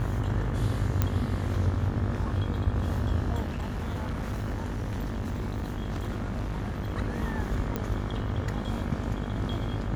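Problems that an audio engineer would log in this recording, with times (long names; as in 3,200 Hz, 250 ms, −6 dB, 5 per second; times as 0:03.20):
mains buzz 50 Hz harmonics 37 −34 dBFS
0:01.02: click −11 dBFS
0:03.42–0:06.94: clipping −27.5 dBFS
0:07.76: click −16 dBFS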